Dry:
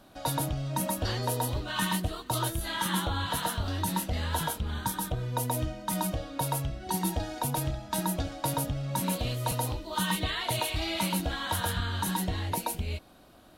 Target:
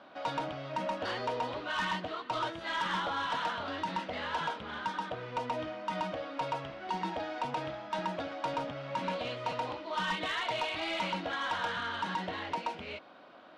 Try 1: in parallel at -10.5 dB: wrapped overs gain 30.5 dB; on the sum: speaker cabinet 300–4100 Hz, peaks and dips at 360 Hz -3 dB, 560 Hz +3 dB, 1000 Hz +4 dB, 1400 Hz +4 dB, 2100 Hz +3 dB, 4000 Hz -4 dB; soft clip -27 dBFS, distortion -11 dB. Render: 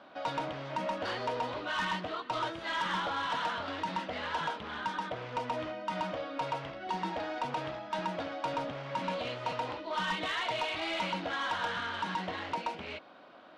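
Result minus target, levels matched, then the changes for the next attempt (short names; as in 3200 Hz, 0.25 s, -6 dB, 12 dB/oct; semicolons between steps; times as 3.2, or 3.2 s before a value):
wrapped overs: distortion -14 dB
change: wrapped overs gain 38 dB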